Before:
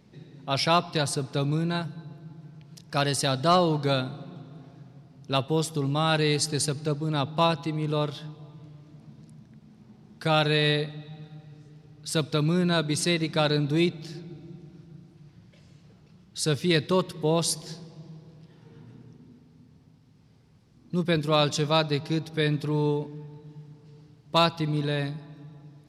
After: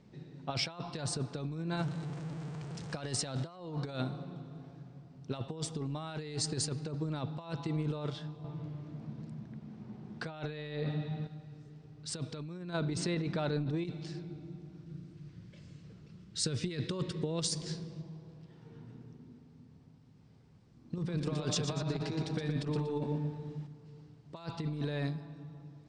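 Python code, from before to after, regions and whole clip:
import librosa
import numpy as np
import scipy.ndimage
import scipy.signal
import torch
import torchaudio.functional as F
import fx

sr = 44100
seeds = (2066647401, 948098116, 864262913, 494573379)

y = fx.chain(x, sr, fx.zero_step(step_db=-37.0),
    fx.highpass(hz=53.0, slope=12), at=(1.77, 3.6))
y = fx.chain(y, sr, fx.highpass(hz=77.0, slope=12),
    fx.high_shelf(hz=5600.0, db=-11.0),
    fx.over_compress(threshold_db=-31.0, ratio=-0.5), at=(8.44, 11.27))
y = fx.chain(y, sr, fx.lowpass(hz=2700.0, slope=6),
    fx.over_compress(threshold_db=-28.0, ratio=-1.0), at=(12.73, 13.85))
y = fx.chain(y, sr, fx.peak_eq(hz=800.0, db=-9.0, octaves=0.81),
    fx.over_compress(threshold_db=-28.0, ratio=-0.5), at=(14.86, 18.02))
y = fx.chain(y, sr, fx.over_compress(threshold_db=-29.0, ratio=-0.5),
    fx.echo_feedback(ms=119, feedback_pct=28, wet_db=-5.0), at=(20.98, 23.67))
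y = scipy.signal.sosfilt(scipy.signal.butter(12, 9000.0, 'lowpass', fs=sr, output='sos'), y)
y = fx.peak_eq(y, sr, hz=5200.0, db=-4.0, octaves=2.9)
y = fx.over_compress(y, sr, threshold_db=-29.0, ratio=-0.5)
y = F.gain(torch.from_numpy(y), -5.0).numpy()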